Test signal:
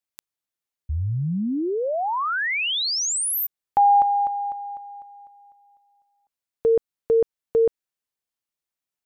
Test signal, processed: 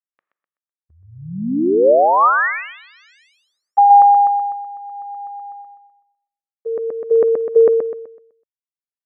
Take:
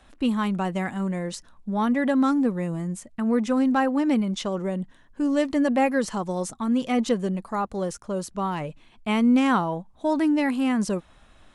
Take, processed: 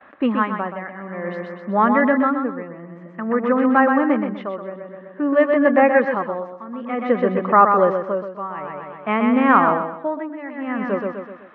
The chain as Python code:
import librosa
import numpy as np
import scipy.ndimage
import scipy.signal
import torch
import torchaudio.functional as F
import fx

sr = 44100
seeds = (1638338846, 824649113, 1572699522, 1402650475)

y = fx.gate_hold(x, sr, open_db=-51.0, close_db=-54.0, hold_ms=80.0, range_db=-25, attack_ms=12.0, release_ms=21.0)
y = fx.rider(y, sr, range_db=4, speed_s=0.5)
y = fx.cabinet(y, sr, low_hz=250.0, low_slope=12, high_hz=2300.0, hz=(570.0, 1200.0, 1800.0), db=(5, 8, 7))
y = fx.echo_feedback(y, sr, ms=126, feedback_pct=46, wet_db=-5.0)
y = y * (1.0 - 0.86 / 2.0 + 0.86 / 2.0 * np.cos(2.0 * np.pi * 0.53 * (np.arange(len(y)) / sr)))
y = y * 10.0 ** (7.0 / 20.0)